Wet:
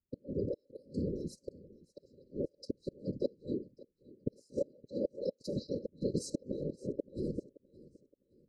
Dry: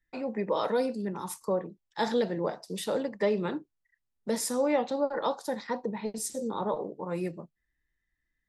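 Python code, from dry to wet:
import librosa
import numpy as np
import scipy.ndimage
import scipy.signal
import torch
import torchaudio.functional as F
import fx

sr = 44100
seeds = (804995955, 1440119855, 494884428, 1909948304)

y = scipy.signal.sosfilt(scipy.signal.butter(2, 11000.0, 'lowpass', fs=sr, output='sos'), x)
y = fx.env_lowpass(y, sr, base_hz=1200.0, full_db=-23.5)
y = fx.low_shelf(y, sr, hz=100.0, db=-9.0)
y = fx.level_steps(y, sr, step_db=14)
y = fx.transient(y, sr, attack_db=10, sustain_db=6)
y = fx.over_compress(y, sr, threshold_db=-26.0, ratio=-0.5)
y = fx.gate_flip(y, sr, shuts_db=-24.0, range_db=-38)
y = fx.whisperise(y, sr, seeds[0])
y = fx.brickwall_bandstop(y, sr, low_hz=600.0, high_hz=3900.0)
y = fx.echo_feedback(y, sr, ms=569, feedback_pct=34, wet_db=-21.0)
y = F.gain(torch.from_numpy(y), 4.0).numpy()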